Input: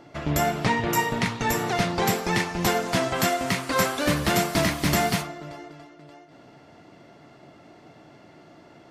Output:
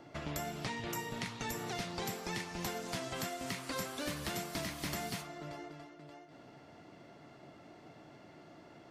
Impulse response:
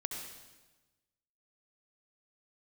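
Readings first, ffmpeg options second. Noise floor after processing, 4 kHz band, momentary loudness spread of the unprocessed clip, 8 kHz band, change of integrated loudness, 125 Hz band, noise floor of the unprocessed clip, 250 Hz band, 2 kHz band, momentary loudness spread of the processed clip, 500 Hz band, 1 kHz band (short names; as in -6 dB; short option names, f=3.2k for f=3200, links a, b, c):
-57 dBFS, -12.5 dB, 4 LU, -13.0 dB, -15.5 dB, -16.0 dB, -51 dBFS, -15.5 dB, -15.5 dB, 17 LU, -16.0 dB, -16.5 dB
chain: -filter_complex "[0:a]acrossover=split=450|2800[a][b][c];[a]acompressor=threshold=-37dB:ratio=4[d];[b]acompressor=threshold=-39dB:ratio=4[e];[c]acompressor=threshold=-38dB:ratio=4[f];[d][e][f]amix=inputs=3:normalize=0,volume=-5.5dB"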